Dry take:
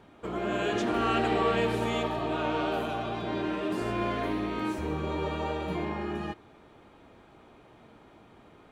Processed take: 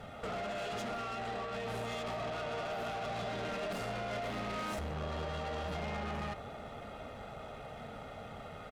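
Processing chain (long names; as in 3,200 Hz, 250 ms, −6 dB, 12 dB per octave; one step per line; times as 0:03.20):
mains-hum notches 60/120/180 Hz
comb filter 1.5 ms, depth 98%
compressor whose output falls as the input rises −33 dBFS, ratio −1
brickwall limiter −27 dBFS, peak gain reduction 8.5 dB
tube saturation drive 40 dB, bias 0.45
delay with a band-pass on its return 445 ms, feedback 80%, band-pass 420 Hz, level −12.5 dB
level +4 dB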